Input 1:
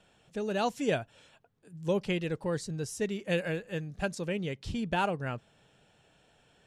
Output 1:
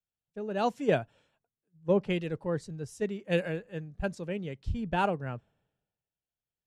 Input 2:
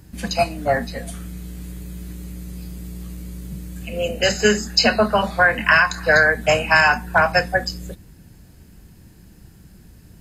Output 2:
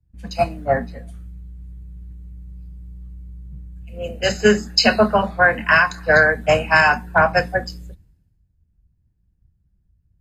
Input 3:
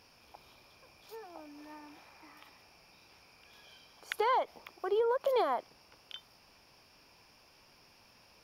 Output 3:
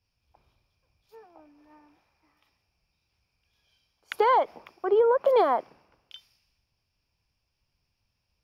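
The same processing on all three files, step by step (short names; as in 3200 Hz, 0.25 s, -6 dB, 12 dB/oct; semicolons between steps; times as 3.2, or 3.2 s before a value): high shelf 2600 Hz -10 dB; three-band expander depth 100%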